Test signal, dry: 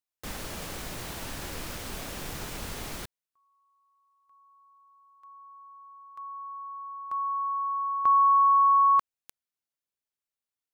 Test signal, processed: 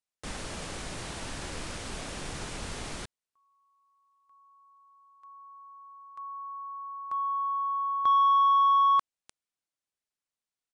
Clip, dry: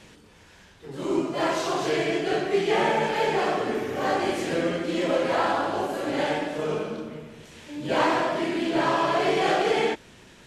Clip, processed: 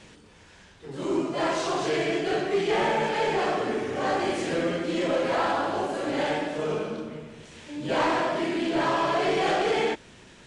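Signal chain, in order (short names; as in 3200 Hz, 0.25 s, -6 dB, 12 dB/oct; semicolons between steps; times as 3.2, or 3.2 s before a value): soft clip -16.5 dBFS; downsampling 22050 Hz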